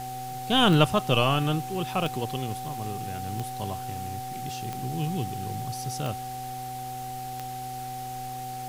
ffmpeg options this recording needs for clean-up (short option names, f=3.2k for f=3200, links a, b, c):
-af "adeclick=t=4,bandreject=f=125.5:t=h:w=4,bandreject=f=251:t=h:w=4,bandreject=f=376.5:t=h:w=4,bandreject=f=502:t=h:w=4,bandreject=f=760:w=30,afwtdn=0.0056"